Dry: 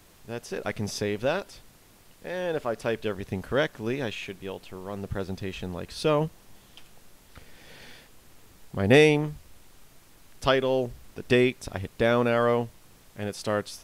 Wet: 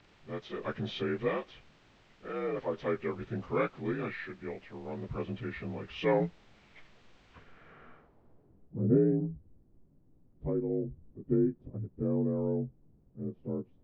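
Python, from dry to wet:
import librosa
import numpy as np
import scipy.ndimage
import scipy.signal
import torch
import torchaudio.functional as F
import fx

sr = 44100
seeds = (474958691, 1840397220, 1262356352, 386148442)

y = fx.partial_stretch(x, sr, pct=85)
y = fx.filter_sweep_lowpass(y, sr, from_hz=3100.0, to_hz=290.0, start_s=7.31, end_s=8.78, q=0.99)
y = y * librosa.db_to_amplitude(-3.0)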